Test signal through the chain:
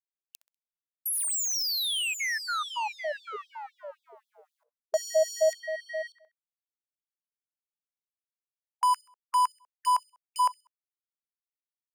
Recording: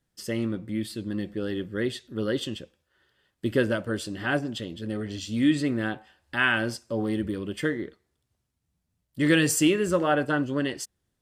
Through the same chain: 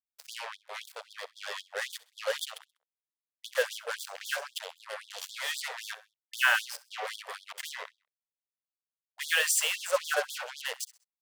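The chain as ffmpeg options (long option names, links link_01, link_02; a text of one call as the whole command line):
ffmpeg -i in.wav -af "acrusher=bits=4:mix=0:aa=0.5,aecho=1:1:65|130|195:0.112|0.0415|0.0154,afftfilt=real='re*gte(b*sr/1024,420*pow(3300/420,0.5+0.5*sin(2*PI*3.8*pts/sr)))':imag='im*gte(b*sr/1024,420*pow(3300/420,0.5+0.5*sin(2*PI*3.8*pts/sr)))':win_size=1024:overlap=0.75" out.wav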